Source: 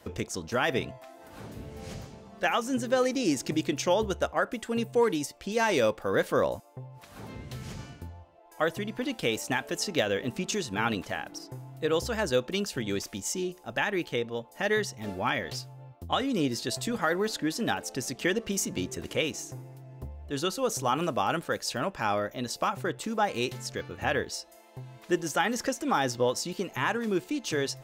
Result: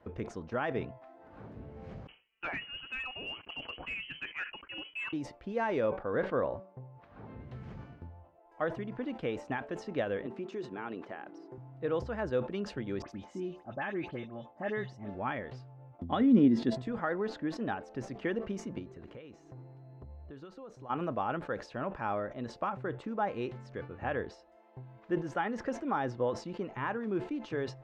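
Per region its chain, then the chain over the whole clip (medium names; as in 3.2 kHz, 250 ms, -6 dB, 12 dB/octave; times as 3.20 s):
2.07–5.13 s: frequency inversion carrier 3.1 kHz + gate -43 dBFS, range -18 dB + hard clipper -21 dBFS
5.81–7.40 s: low-pass 4.7 kHz + de-hum 190.2 Hz, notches 13
10.26–11.58 s: high-pass 200 Hz + peaking EQ 370 Hz +9 dB 0.31 oct + compression 2:1, threshold -33 dBFS
13.02–15.15 s: high-pass 54 Hz + comb of notches 470 Hz + phase dispersion highs, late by 72 ms, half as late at 2.8 kHz
15.99–16.82 s: peaking EQ 2 kHz +5 dB 0.21 oct + upward compressor, threshold -37 dBFS + small resonant body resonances 230/3400 Hz, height 15 dB, ringing for 35 ms
18.78–20.89 s: compression 10:1, threshold -38 dBFS + whistle 4.1 kHz -65 dBFS
whole clip: low-pass 1.6 kHz 12 dB/octave; decay stretcher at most 150 dB/s; trim -5 dB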